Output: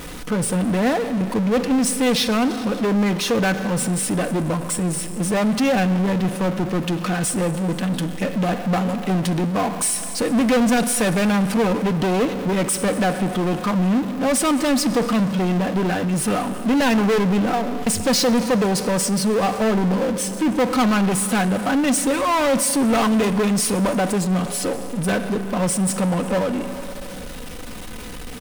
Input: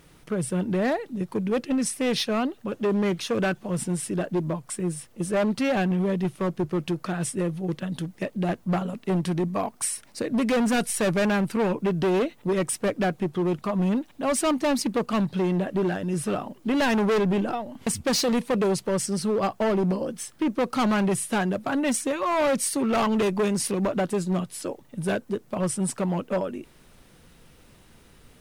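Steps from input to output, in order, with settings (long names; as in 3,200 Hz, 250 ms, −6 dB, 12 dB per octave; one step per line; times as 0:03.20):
comb filter 4 ms, depth 55%
four-comb reverb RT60 2.1 s, combs from 32 ms, DRR 13.5 dB
power curve on the samples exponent 0.5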